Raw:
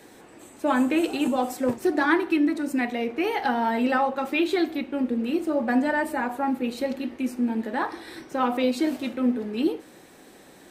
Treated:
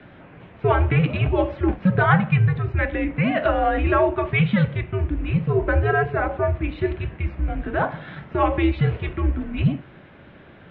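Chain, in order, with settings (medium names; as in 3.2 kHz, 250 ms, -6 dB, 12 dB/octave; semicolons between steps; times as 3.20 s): mistuned SSB -180 Hz 250–3200 Hz; trim +5 dB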